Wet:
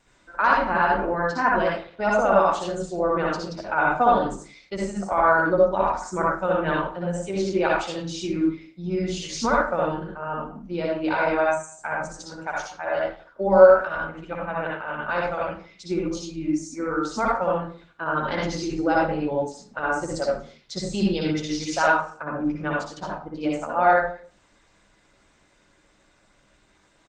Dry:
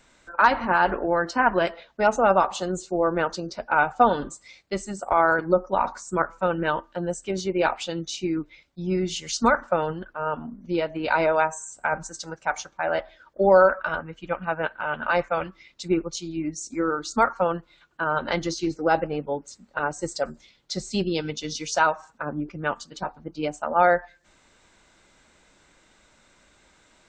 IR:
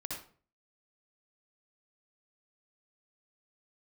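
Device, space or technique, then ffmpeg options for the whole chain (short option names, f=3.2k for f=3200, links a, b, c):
speakerphone in a meeting room: -filter_complex "[1:a]atrim=start_sample=2205[a];[0:a][a]afir=irnorm=-1:irlink=0,asplit=2[b][c];[c]adelay=200,highpass=300,lowpass=3.4k,asoftclip=type=hard:threshold=-8.5dB,volume=-29dB[d];[b][d]amix=inputs=2:normalize=0,dynaudnorm=f=490:g=21:m=4dB" -ar 48000 -c:a libopus -b:a 20k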